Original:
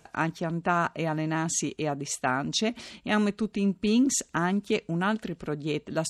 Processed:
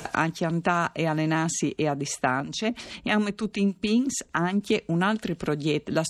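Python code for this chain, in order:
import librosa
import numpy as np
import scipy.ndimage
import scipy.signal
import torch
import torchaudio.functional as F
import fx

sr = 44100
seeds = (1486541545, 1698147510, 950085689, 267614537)

y = fx.harmonic_tremolo(x, sr, hz=6.4, depth_pct=70, crossover_hz=840.0, at=(2.4, 4.61))
y = fx.band_squash(y, sr, depth_pct=70)
y = F.gain(torch.from_numpy(y), 3.0).numpy()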